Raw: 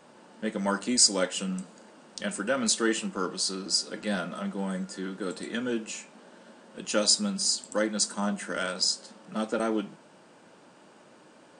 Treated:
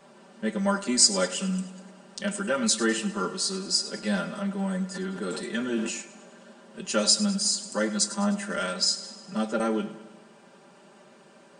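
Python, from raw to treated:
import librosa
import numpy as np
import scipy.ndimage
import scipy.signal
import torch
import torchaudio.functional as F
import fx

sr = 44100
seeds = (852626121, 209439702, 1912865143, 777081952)

y = x + 0.92 * np.pad(x, (int(5.1 * sr / 1000.0), 0))[:len(x)]
y = fx.echo_feedback(y, sr, ms=102, feedback_pct=58, wet_db=-15.5)
y = fx.sustainer(y, sr, db_per_s=47.0, at=(4.94, 6.0), fade=0.02)
y = y * librosa.db_to_amplitude(-1.5)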